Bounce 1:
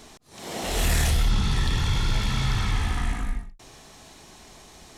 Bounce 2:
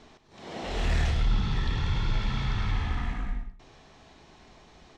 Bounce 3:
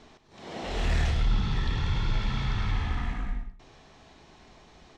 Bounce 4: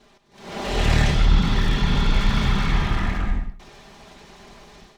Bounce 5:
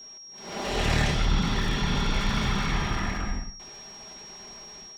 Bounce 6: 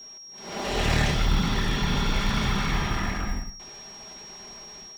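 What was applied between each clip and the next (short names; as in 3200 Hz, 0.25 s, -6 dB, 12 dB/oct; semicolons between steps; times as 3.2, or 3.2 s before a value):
air absorption 160 m; echo 0.104 s -10 dB; gain -4 dB
nothing audible
minimum comb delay 5 ms; AGC gain up to 10 dB
low shelf 130 Hz -6.5 dB; whine 5600 Hz -40 dBFS; gain -2.5 dB
short-mantissa float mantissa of 4-bit; gain +1 dB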